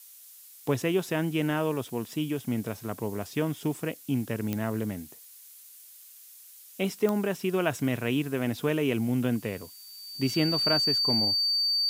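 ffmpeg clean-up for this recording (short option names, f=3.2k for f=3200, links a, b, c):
-af "adeclick=t=4,bandreject=f=4.6k:w=30,afftdn=nr=24:nf=-51"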